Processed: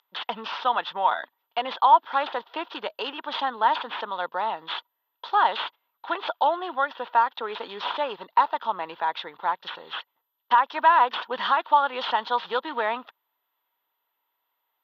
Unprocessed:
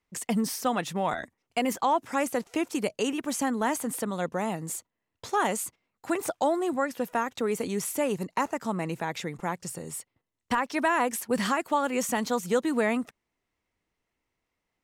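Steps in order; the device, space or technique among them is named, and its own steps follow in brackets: toy sound module (decimation joined by straight lines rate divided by 4×; class-D stage that switches slowly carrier 12 kHz; cabinet simulation 700–4200 Hz, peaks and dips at 940 Hz +10 dB, 1.4 kHz +4 dB, 2.2 kHz -8 dB, 3.4 kHz +10 dB); trim +3 dB

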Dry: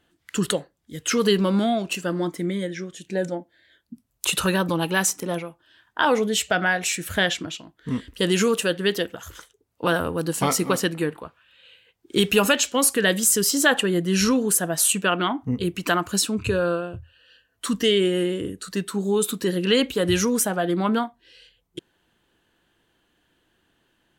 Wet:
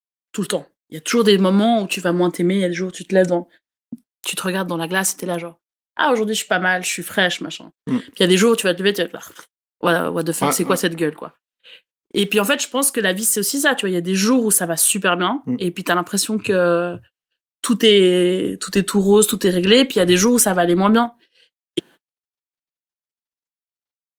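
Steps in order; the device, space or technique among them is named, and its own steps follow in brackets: video call (high-pass 160 Hz 24 dB/octave; level rider gain up to 16 dB; gate -38 dBFS, range -52 dB; trim -1 dB; Opus 32 kbps 48 kHz)

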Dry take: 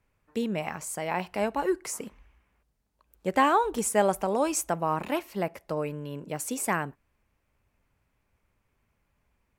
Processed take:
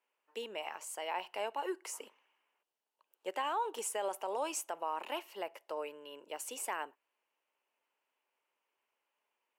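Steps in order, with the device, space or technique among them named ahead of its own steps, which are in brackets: laptop speaker (high-pass 380 Hz 24 dB/octave; peaking EQ 920 Hz +6 dB 0.29 oct; peaking EQ 2.9 kHz +11 dB 0.23 oct; peak limiter -18 dBFS, peak gain reduction 9.5 dB); trim -8.5 dB

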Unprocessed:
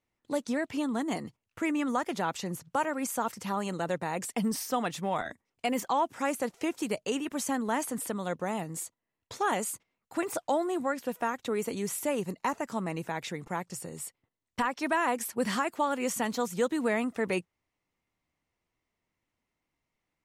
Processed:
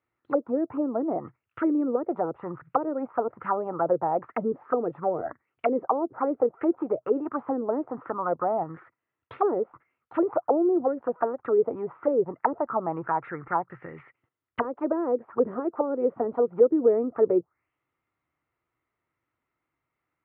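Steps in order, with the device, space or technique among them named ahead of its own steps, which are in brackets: envelope filter bass rig (touch-sensitive low-pass 450–4100 Hz down, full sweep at -26 dBFS; cabinet simulation 62–2200 Hz, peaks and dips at 130 Hz +4 dB, 200 Hz -9 dB, 340 Hz +4 dB, 1.3 kHz +10 dB)

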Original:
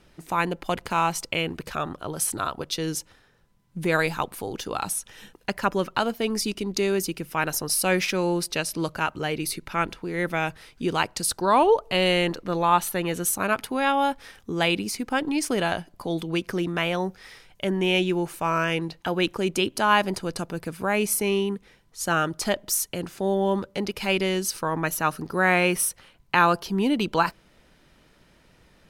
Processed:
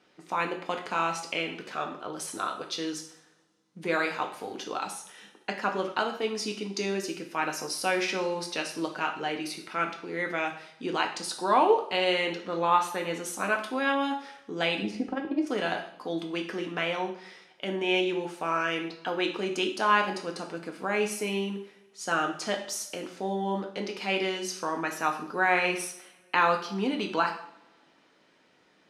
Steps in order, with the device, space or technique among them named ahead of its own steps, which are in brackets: 14.82–15.47 s: tilt EQ -4.5 dB/octave; public-address speaker with an overloaded transformer (transformer saturation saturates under 220 Hz; band-pass 260–6300 Hz); two-slope reverb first 0.56 s, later 2.2 s, from -26 dB, DRR 2 dB; trim -5 dB

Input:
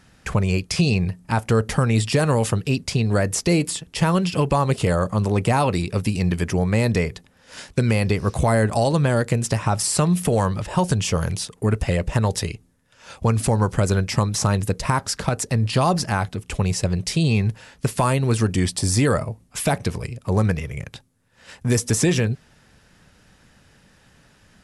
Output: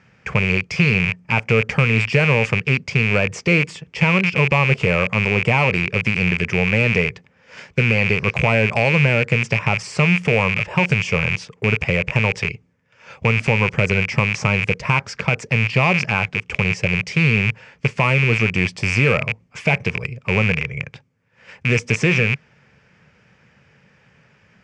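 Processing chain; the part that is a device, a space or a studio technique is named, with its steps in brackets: distance through air 120 m; car door speaker with a rattle (rattle on loud lows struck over -26 dBFS, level -13 dBFS; cabinet simulation 100–7600 Hz, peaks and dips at 140 Hz +4 dB, 290 Hz -9 dB, 470 Hz +3 dB, 720 Hz -3 dB, 2.3 kHz +9 dB, 3.9 kHz -9 dB); trim +1 dB

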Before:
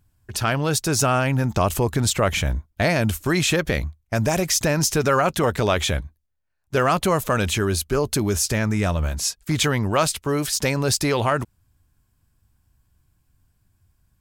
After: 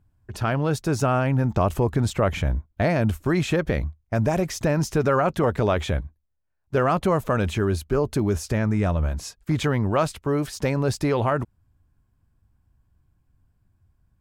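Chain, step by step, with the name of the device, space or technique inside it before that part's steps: through cloth (treble shelf 2.4 kHz -15 dB)

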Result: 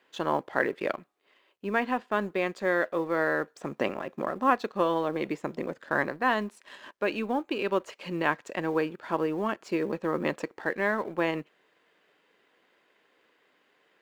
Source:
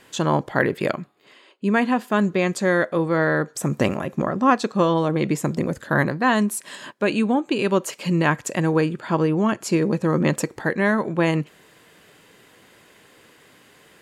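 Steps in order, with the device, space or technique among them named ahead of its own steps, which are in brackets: phone line with mismatched companding (band-pass 320–3500 Hz; companding laws mixed up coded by A); trim -5 dB

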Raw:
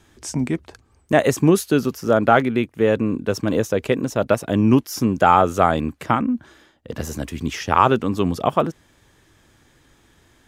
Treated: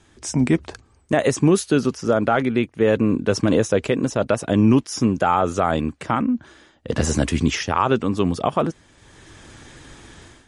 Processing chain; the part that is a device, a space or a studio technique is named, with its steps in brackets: low-bitrate web radio (level rider gain up to 13 dB; peak limiter -6 dBFS, peak gain reduction 5.5 dB; MP3 48 kbps 44.1 kHz)

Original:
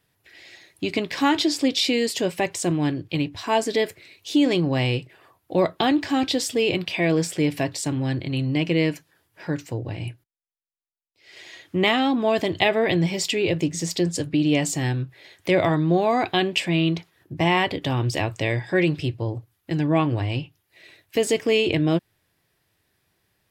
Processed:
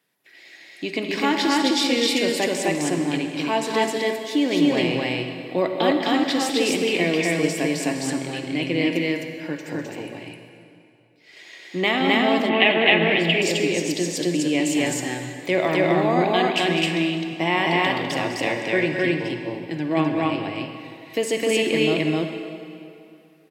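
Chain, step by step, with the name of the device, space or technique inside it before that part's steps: stadium PA (high-pass 180 Hz 24 dB/octave; peaking EQ 2.1 kHz +3 dB 0.46 oct; loudspeakers at several distances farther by 69 m -10 dB, 89 m 0 dB; reverberation RT60 2.6 s, pre-delay 42 ms, DRR 6 dB); 12.49–13.42 s: resonant high shelf 4.2 kHz -13.5 dB, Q 3; trim -2.5 dB

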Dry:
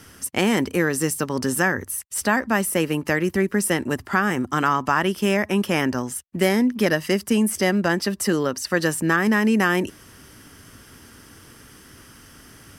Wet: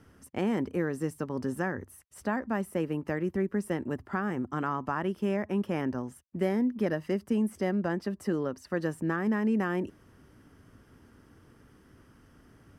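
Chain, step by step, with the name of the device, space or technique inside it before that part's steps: through cloth (treble shelf 2 kHz -17.5 dB); trim -7.5 dB

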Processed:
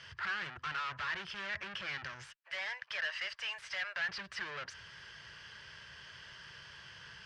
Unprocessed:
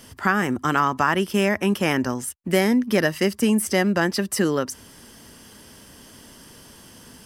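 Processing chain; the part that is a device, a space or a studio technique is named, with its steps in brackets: 2.27–4.09 s: steep high-pass 590 Hz 48 dB/octave; scooped metal amplifier (valve stage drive 35 dB, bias 0.35; cabinet simulation 85–4000 Hz, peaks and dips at 140 Hz +5 dB, 240 Hz -9 dB, 350 Hz +6 dB, 770 Hz -5 dB, 1.6 kHz +7 dB, 3.7 kHz -5 dB; amplifier tone stack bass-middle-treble 10-0-10); trim +5.5 dB

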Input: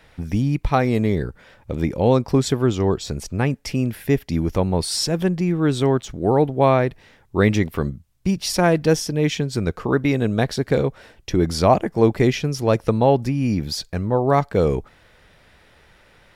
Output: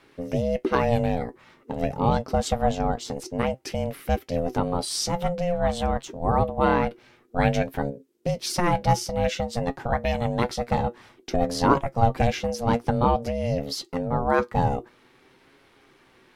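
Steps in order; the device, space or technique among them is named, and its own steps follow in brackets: alien voice (ring modulator 350 Hz; flange 0.51 Hz, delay 7.2 ms, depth 1.3 ms, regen +61%); trim +2.5 dB

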